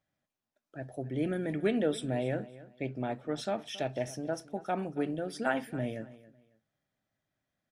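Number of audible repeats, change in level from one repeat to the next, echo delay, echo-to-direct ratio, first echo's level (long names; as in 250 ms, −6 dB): 2, −12.0 dB, 275 ms, −17.5 dB, −18.0 dB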